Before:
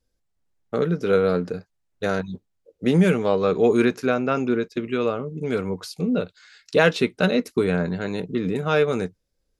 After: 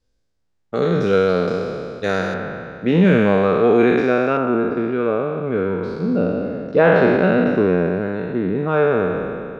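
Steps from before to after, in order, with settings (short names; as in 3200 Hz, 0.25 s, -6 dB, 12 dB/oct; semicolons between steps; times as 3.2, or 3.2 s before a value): spectral trails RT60 2.35 s; LPF 7000 Hz 12 dB/oct, from 2.34 s 2700 Hz, from 4.37 s 1500 Hz; gain +1 dB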